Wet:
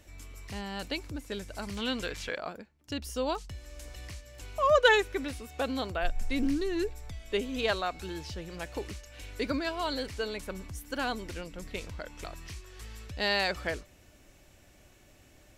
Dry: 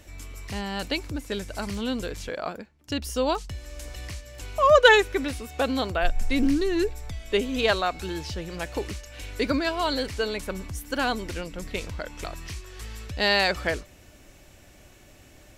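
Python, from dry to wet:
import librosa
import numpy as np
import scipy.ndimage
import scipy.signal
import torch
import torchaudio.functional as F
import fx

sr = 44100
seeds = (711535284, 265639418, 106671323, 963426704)

y = fx.peak_eq(x, sr, hz=2300.0, db=9.5, octaves=2.9, at=(1.77, 2.38))
y = F.gain(torch.from_numpy(y), -6.5).numpy()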